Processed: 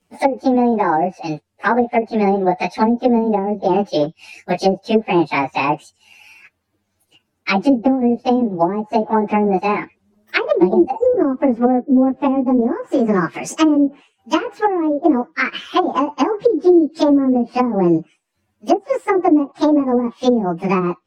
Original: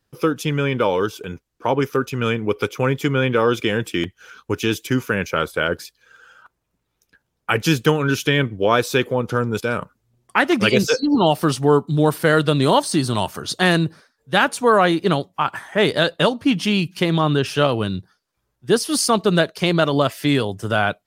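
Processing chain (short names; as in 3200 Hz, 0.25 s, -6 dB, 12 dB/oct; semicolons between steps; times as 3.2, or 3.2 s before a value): pitch shift by moving bins +9.5 st; treble ducked by the level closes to 340 Hz, closed at -16 dBFS; bell 340 Hz +5.5 dB 0.2 oct; gain +8.5 dB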